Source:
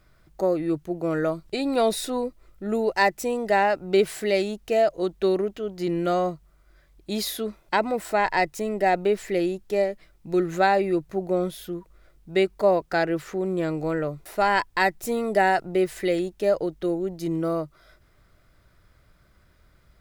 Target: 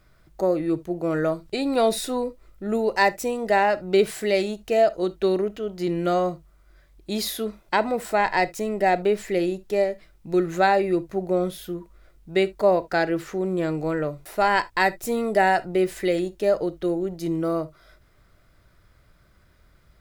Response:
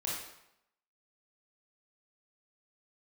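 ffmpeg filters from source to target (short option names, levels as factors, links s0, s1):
-filter_complex "[0:a]asplit=2[s0][s1];[1:a]atrim=start_sample=2205,atrim=end_sample=3528[s2];[s1][s2]afir=irnorm=-1:irlink=0,volume=0.158[s3];[s0][s3]amix=inputs=2:normalize=0"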